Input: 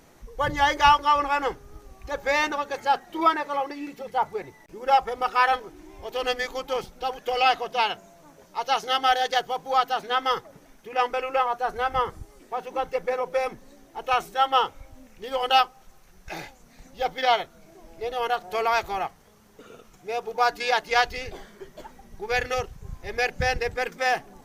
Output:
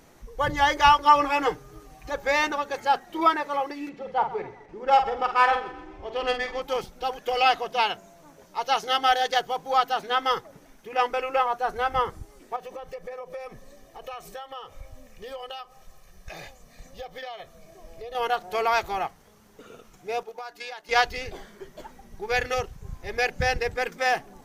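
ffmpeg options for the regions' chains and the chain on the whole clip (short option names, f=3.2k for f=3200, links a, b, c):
-filter_complex "[0:a]asettb=1/sr,asplit=3[a][b][c];[a]atrim=end=1.054[d];[b]atrim=start=1.05:end=2.1,asetpts=PTS-STARTPTS,afade=t=in:d=0.004:c=qsin,afade=t=out:st=1.046:d=0.004:c=qsin,highpass=44,aecho=1:1:6.6:0.95,atrim=end_sample=46305[e];[c]atrim=start=2.096[f];[d][e]acrossfade=d=0.004:c1=hsin:c2=qsin[g];[g][f]acrossfade=d=0.004:c1=qsin:c2=hsin,asettb=1/sr,asplit=3[h][i][j];[h]atrim=end=3.894[k];[i]atrim=start=3.89:end=6.62,asetpts=PTS-STARTPTS,afade=t=in:d=0.004:c=qsin,afade=t=out:st=2.726:d=0.004:c=qsin,adynamicsmooth=sensitivity=1:basefreq=3.8k,asplit=2[l][m];[m]adelay=48,volume=-8dB[n];[l][n]amix=inputs=2:normalize=0,atrim=end_sample=120393,aecho=1:1:128|256|384|512:0.158|0.0682|0.0293|0.0126,atrim=end_sample=120393[o];[j]atrim=start=6.616[p];[k][o]acrossfade=d=0.004:c1=hsin:c2=qsin[q];[q][p]acrossfade=d=0.004:c1=qsin:c2=hsin,asettb=1/sr,asplit=3[r][s][t];[r]atrim=end=12.564[u];[s]atrim=start=12.56:end=18.15,asetpts=PTS-STARTPTS,afade=t=in:d=0.004:c=qsin,afade=t=out:st=5.586:d=0.004:c=qsin,bandreject=f=1.4k:w=9.9,acompressor=threshold=-36dB:ratio=8:attack=3.2:release=140:knee=1:detection=peak,aecho=1:1:1.7:0.51,atrim=end_sample=246519[v];[t]atrim=start=18.146[w];[u][v]acrossfade=d=0.004:c1=hsin:c2=qsin[x];[x][w]acrossfade=d=0.004:c1=qsin:c2=hsin,asettb=1/sr,asplit=3[y][z][aa];[y]atrim=end=20.234[ab];[z]atrim=start=20.23:end=20.89,asetpts=PTS-STARTPTS,afade=t=in:d=0.004:c=qsin,afade=t=out:st=0.656:d=0.004:c=qsin,agate=range=-7dB:threshold=-32dB:ratio=16:release=100:detection=peak,lowshelf=f=240:g=-11,acompressor=threshold=-33dB:ratio=20:attack=3.2:release=140:knee=1:detection=peak[ac];[aa]atrim=start=20.886[ad];[ab][ac]acrossfade=d=0.004:c1=hsin:c2=qsin[ae];[ae][ad]acrossfade=d=0.004:c1=qsin:c2=hsin"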